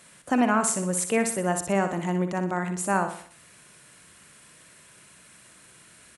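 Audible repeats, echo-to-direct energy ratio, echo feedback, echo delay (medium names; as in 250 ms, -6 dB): 4, -7.5 dB, 45%, 61 ms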